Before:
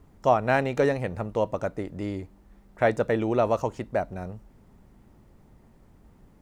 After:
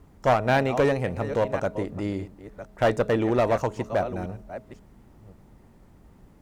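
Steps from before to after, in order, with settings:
delay that plays each chunk backwards 533 ms, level −13 dB
asymmetric clip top −20 dBFS
hum removal 212.4 Hz, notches 3
level +2.5 dB

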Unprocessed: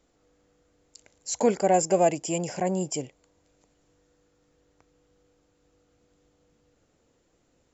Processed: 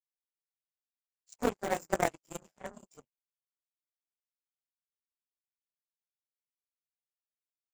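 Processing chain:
random phases in long frames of 50 ms
0:02.43–0:02.88: frequency shifter +28 Hz
power curve on the samples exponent 3
in parallel at −9.5 dB: wrap-around overflow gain 26 dB

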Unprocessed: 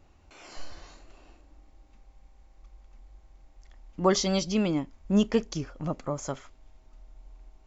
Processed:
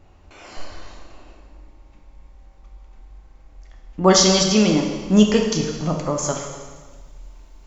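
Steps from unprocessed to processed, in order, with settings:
high-shelf EQ 3,900 Hz −6 dB, from 0:04.08 +8.5 dB
convolution reverb RT60 1.4 s, pre-delay 5 ms, DRR 1.5 dB
level +7 dB

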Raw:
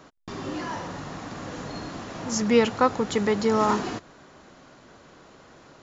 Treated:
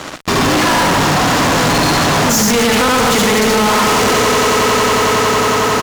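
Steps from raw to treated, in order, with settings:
on a send: loudspeakers that aren't time-aligned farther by 27 metres −1 dB, 43 metres −6 dB, 65 metres −10 dB, 87 metres −7 dB
on the sum: dynamic equaliser 370 Hz, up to −7 dB, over −34 dBFS, Q 1.9
echo that builds up and dies away 91 ms, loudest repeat 8, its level −18 dB
brickwall limiter −17.5 dBFS, peak gain reduction 9.5 dB
low-shelf EQ 470 Hz −3.5 dB
fuzz pedal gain 43 dB, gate −52 dBFS
level +2 dB

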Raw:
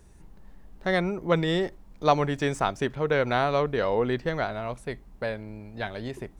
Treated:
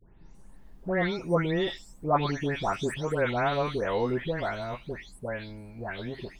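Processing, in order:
every frequency bin delayed by itself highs late, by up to 347 ms
level −1.5 dB

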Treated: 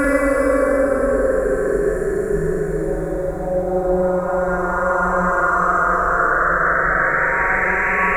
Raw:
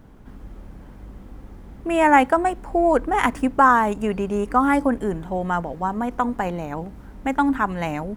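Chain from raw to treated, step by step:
sound drawn into the spectrogram rise, 0:05.35–0:06.53, 710–7,300 Hz −27 dBFS
phaser with its sweep stopped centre 840 Hz, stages 6
extreme stretch with random phases 7.4×, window 0.50 s, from 0:04.80
on a send: flutter between parallel walls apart 7.5 metres, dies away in 0.59 s
on the sum: level +7.5 dB

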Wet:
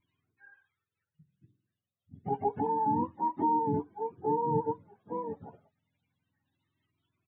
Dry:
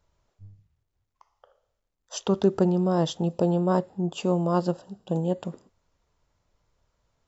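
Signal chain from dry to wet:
frequency axis turned over on the octave scale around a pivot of 400 Hz
downsampling to 8,000 Hz
flanger whose copies keep moving one way rising 0.29 Hz

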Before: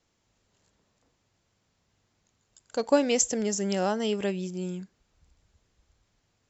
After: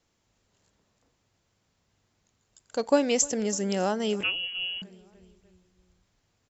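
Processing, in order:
on a send: repeating echo 301 ms, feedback 57%, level −22 dB
0:04.23–0:04.82: on the sum: voice inversion scrambler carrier 3,100 Hz

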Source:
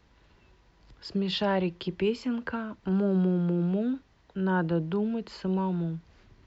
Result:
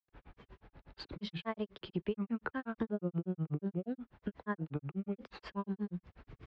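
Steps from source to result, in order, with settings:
low-pass filter 2,500 Hz 12 dB per octave
downward compressor 3 to 1, threshold −42 dBFS, peak gain reduction 15 dB
granular cloud 100 ms, grains 8.3 per second, pitch spread up and down by 3 semitones
level +7 dB

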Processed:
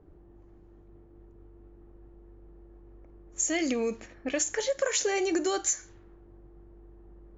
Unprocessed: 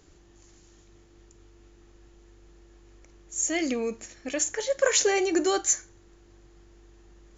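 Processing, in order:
low-pass that shuts in the quiet parts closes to 710 Hz, open at −24.5 dBFS
downward compressor 6 to 1, threshold −27 dBFS, peak gain reduction 10 dB
level +2.5 dB

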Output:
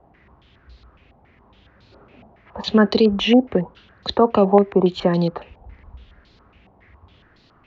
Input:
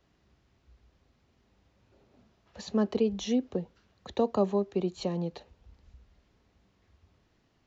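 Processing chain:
boost into a limiter +18 dB
low-pass on a step sequencer 7.2 Hz 800–4,200 Hz
level −5 dB

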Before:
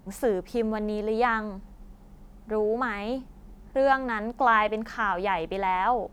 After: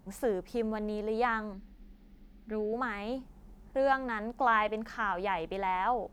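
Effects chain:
0:01.53–0:02.73: graphic EQ with 10 bands 125 Hz −12 dB, 250 Hz +8 dB, 500 Hz −4 dB, 1,000 Hz −10 dB, 2,000 Hz +5 dB, 4,000 Hz +5 dB, 8,000 Hz −10 dB
level −5.5 dB

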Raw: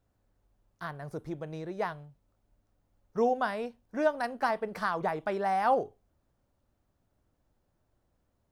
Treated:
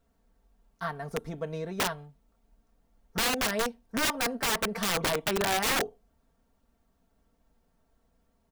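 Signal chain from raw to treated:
comb filter 4.4 ms, depth 81%
wrap-around overflow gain 24 dB
level +2.5 dB

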